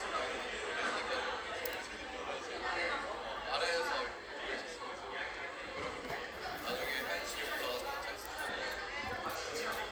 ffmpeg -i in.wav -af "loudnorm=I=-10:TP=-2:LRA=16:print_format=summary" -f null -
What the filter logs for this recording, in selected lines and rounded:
Input Integrated:    -38.7 LUFS
Input True Peak:     -17.6 dBTP
Input LRA:             1.7 LU
Input Threshold:     -48.7 LUFS